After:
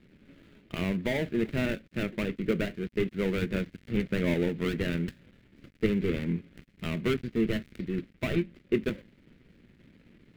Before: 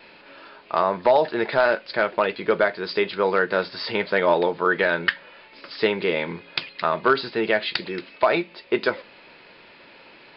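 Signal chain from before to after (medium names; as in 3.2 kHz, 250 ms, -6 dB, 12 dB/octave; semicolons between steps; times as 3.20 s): dead-time distortion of 0.26 ms; FFT filter 230 Hz 0 dB, 910 Hz -30 dB, 2.1 kHz -13 dB, 6 kHz -28 dB; trim +6.5 dB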